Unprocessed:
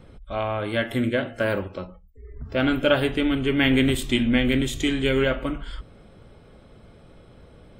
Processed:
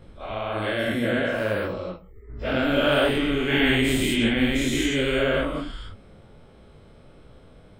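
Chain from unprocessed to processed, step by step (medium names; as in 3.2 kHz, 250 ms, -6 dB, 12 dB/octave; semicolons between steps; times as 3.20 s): every event in the spectrogram widened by 240 ms; detune thickener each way 57 cents; trim -2.5 dB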